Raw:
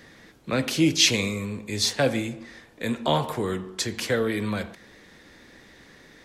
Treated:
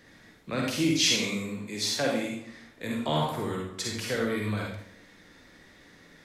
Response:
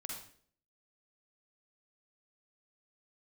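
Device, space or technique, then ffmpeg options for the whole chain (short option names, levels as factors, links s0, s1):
bathroom: -filter_complex "[0:a]asettb=1/sr,asplit=3[s0][s1][s2];[s0]atrim=end=0.984[s3];[s1]atrim=start=0.98:end=2.5,asetpts=PTS-STARTPTS,afade=t=in:d=0.004:c=qsin,afade=t=out:st=1.516:d=0.004:c=qsin,highpass=f=140:w=0.5412,highpass=f=140:w=1.3066[s4];[s2]atrim=start=2.496[s5];[s3][s4]acrossfade=d=0.004:c1=hsin:c2=qsin[s6];[s6][s5]acrossfade=d=0.004:c1=qsin:c2=hsin[s7];[1:a]atrim=start_sample=2205[s8];[s7][s8]afir=irnorm=-1:irlink=0,volume=0.841"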